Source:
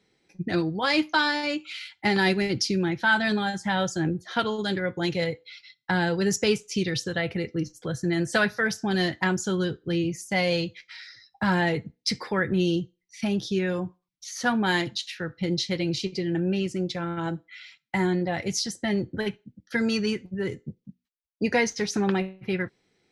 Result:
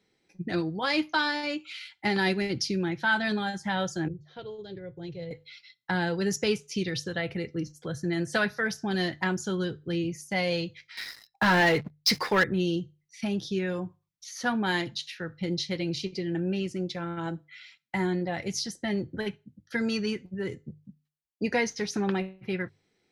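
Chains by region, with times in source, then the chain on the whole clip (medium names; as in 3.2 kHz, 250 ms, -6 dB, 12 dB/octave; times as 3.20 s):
4.08–5.31 s: FFT filter 150 Hz 0 dB, 220 Hz -18 dB, 420 Hz -5 dB, 1.2 kHz -21 dB, 4 kHz -14 dB, 11 kHz -29 dB + careless resampling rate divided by 3×, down none, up filtered
10.97–12.44 s: bass shelf 350 Hz -9 dB + waveshaping leveller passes 3
whole clip: hum notches 50/100/150 Hz; dynamic bell 7.7 kHz, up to -6 dB, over -56 dBFS, Q 4.6; trim -3.5 dB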